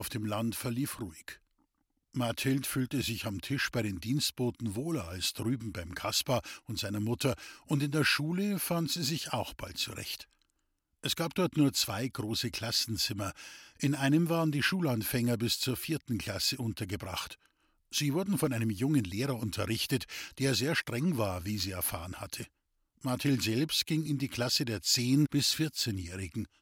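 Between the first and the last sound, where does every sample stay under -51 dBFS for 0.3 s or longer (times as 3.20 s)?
1.36–2.13 s
10.33–11.04 s
17.46–17.91 s
22.47–23.02 s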